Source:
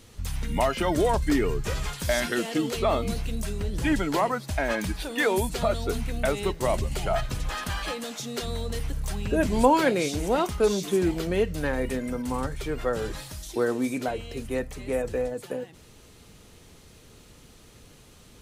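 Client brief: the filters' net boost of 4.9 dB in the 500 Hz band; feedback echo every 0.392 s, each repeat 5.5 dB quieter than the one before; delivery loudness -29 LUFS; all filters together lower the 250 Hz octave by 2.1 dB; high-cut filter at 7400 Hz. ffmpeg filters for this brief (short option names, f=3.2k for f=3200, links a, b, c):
-af "lowpass=7.4k,equalizer=f=250:t=o:g=-6,equalizer=f=500:t=o:g=7.5,aecho=1:1:392|784|1176|1568|1960|2352|2744:0.531|0.281|0.149|0.079|0.0419|0.0222|0.0118,volume=-5.5dB"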